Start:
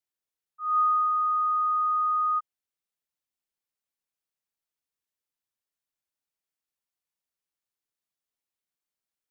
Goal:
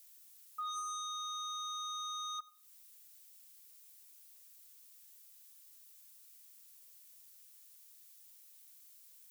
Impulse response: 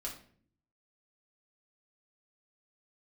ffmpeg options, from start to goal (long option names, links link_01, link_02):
-filter_complex "[0:a]aderivative,asplit=2[link_01][link_02];[link_02]aeval=exprs='0.0224*sin(PI/2*4.47*val(0)/0.0224)':channel_layout=same,volume=-6.5dB[link_03];[link_01][link_03]amix=inputs=2:normalize=0,acompressor=threshold=-57dB:ratio=6,asplit=2[link_04][link_05];[1:a]atrim=start_sample=2205,adelay=84[link_06];[link_05][link_06]afir=irnorm=-1:irlink=0,volume=-20.5dB[link_07];[link_04][link_07]amix=inputs=2:normalize=0,acrusher=bits=7:mode=log:mix=0:aa=0.000001,volume=15.5dB"